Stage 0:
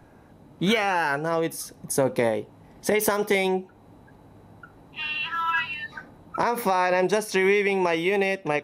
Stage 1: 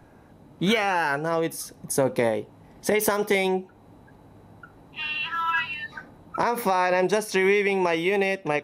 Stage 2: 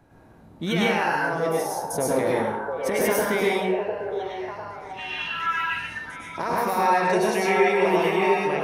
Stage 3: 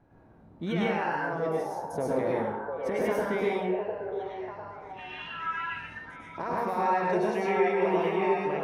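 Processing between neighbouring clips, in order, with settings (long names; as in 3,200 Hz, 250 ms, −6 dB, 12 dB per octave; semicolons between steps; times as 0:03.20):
no processing that can be heard
on a send: echo through a band-pass that steps 699 ms, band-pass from 590 Hz, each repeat 0.7 octaves, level −2 dB; on the sum: dense smooth reverb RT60 0.68 s, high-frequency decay 0.7×, pre-delay 90 ms, DRR −4.5 dB; level −5.5 dB
tape wow and flutter 26 cents; low-pass filter 1,500 Hz 6 dB per octave; level −4.5 dB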